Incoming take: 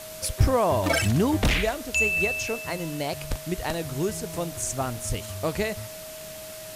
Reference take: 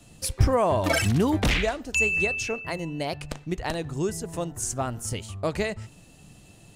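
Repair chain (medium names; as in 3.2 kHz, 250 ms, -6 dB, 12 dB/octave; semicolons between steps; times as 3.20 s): band-stop 630 Hz, Q 30; 1.41–1.53 s: high-pass 140 Hz 24 dB/octave; 3.29–3.41 s: high-pass 140 Hz 24 dB/octave; 5.08–5.20 s: high-pass 140 Hz 24 dB/octave; noise reduction 12 dB, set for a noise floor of -40 dBFS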